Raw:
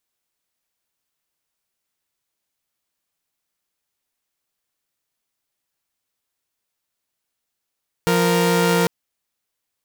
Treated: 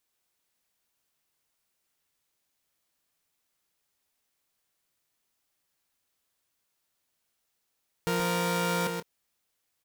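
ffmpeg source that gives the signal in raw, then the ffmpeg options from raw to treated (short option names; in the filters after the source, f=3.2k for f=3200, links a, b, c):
-f lavfi -i "aevalsrc='0.168*((2*mod(174.61*t,1)-1)+(2*mod(466.16*t,1)-1))':d=0.8:s=44100"
-filter_complex "[0:a]alimiter=limit=-20.5dB:level=0:latency=1,asplit=2[a][b];[b]adelay=25,volume=-13dB[c];[a][c]amix=inputs=2:normalize=0,asplit=2[d][e];[e]aecho=0:1:130:0.531[f];[d][f]amix=inputs=2:normalize=0"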